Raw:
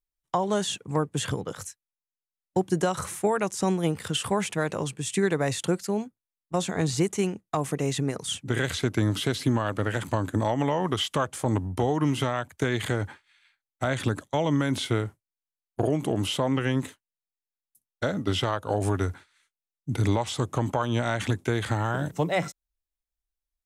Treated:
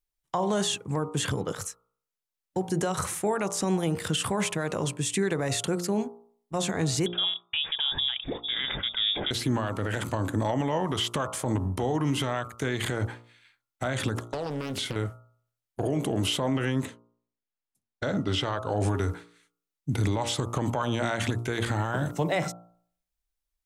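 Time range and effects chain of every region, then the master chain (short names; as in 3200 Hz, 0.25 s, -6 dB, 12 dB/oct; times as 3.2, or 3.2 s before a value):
7.06–9.31 compressor 2:1, threshold -28 dBFS + inverted band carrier 3600 Hz
14.15–14.96 compressor 16:1, threshold -29 dBFS + Doppler distortion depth 0.89 ms
16.85–18.89 LPF 7700 Hz + mismatched tape noise reduction decoder only
whole clip: de-hum 58.54 Hz, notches 24; limiter -21 dBFS; gain +3 dB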